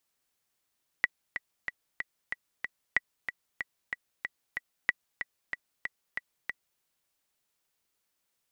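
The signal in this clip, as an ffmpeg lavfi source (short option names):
-f lavfi -i "aevalsrc='pow(10,(-10-9.5*gte(mod(t,6*60/187),60/187))/20)*sin(2*PI*1950*mod(t,60/187))*exp(-6.91*mod(t,60/187)/0.03)':d=5.77:s=44100"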